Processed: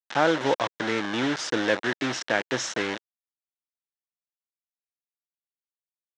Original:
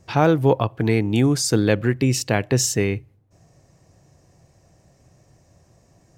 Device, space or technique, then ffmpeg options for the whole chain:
hand-held game console: -af "acrusher=bits=3:mix=0:aa=0.000001,highpass=400,equalizer=f=420:t=q:w=4:g=-7,equalizer=f=720:t=q:w=4:g=-4,equalizer=f=1.1k:t=q:w=4:g=-4,equalizer=f=1.6k:t=q:w=4:g=3,equalizer=f=2.5k:t=q:w=4:g=-6,equalizer=f=4.6k:t=q:w=4:g=-8,lowpass=f=5k:w=0.5412,lowpass=f=5k:w=1.3066"

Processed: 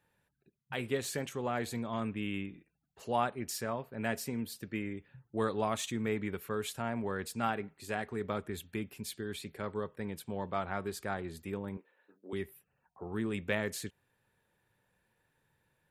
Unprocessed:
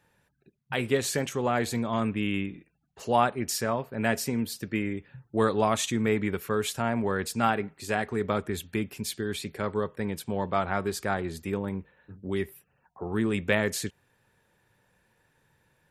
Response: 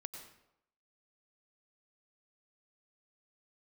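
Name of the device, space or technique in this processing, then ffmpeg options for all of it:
exciter from parts: -filter_complex "[0:a]asettb=1/sr,asplit=3[a][b][c];[a]atrim=end=11.774[d];[b]atrim=start=11.77:end=12.33,asetpts=PTS-STARTPTS,afade=t=in:d=0.004:c=qsin,afade=t=out:st=0.556:d=0.004:c=qsin,highpass=f=300:w=0.5412,highpass=f=300:w=1.3066[e];[c]atrim=start=12.326[f];[d][e]acrossfade=d=0.004:c1=hsin:c2=qsin[g];[g][f]acrossfade=d=0.004:c1=qsin:c2=hsin,asplit=2[h][i];[i]highpass=2.7k,asoftclip=type=tanh:threshold=-34.5dB,highpass=f=4.6k:w=0.5412,highpass=f=4.6k:w=1.3066,volume=-9dB[j];[h][j]amix=inputs=2:normalize=0,volume=-8dB"

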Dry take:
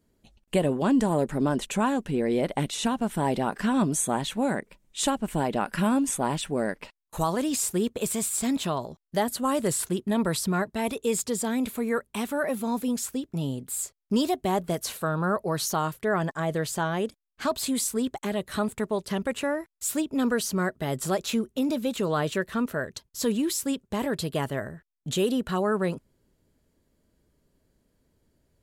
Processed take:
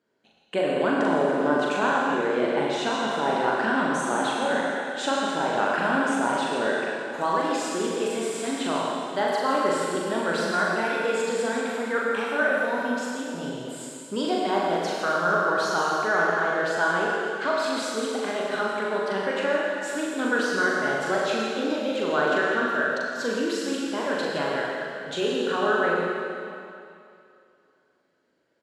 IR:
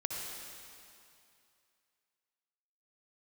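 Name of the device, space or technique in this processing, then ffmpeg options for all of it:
station announcement: -filter_complex "[0:a]highpass=330,lowpass=4.3k,equalizer=f=1.5k:t=o:w=0.25:g=9,aecho=1:1:40.82|163.3:0.708|0.251[a];[1:a]atrim=start_sample=2205[b];[a][b]afir=irnorm=-1:irlink=0"

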